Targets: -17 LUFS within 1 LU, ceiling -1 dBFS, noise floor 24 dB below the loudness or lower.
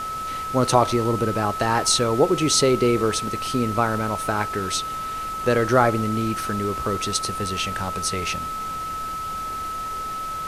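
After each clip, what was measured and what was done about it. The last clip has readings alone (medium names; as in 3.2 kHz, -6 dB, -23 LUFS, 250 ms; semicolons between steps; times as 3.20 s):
steady tone 1.3 kHz; tone level -27 dBFS; noise floor -30 dBFS; noise floor target -47 dBFS; loudness -22.5 LUFS; peak level -2.0 dBFS; loudness target -17.0 LUFS
-> band-stop 1.3 kHz, Q 30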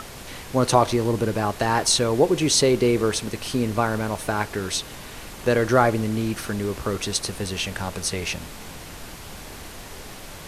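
steady tone not found; noise floor -39 dBFS; noise floor target -47 dBFS
-> noise print and reduce 8 dB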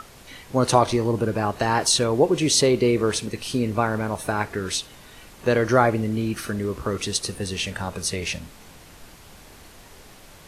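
noise floor -47 dBFS; loudness -23.0 LUFS; peak level -2.5 dBFS; loudness target -17.0 LUFS
-> trim +6 dB; peak limiter -1 dBFS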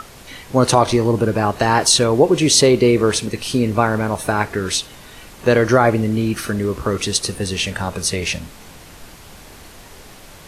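loudness -17.0 LUFS; peak level -1.0 dBFS; noise floor -41 dBFS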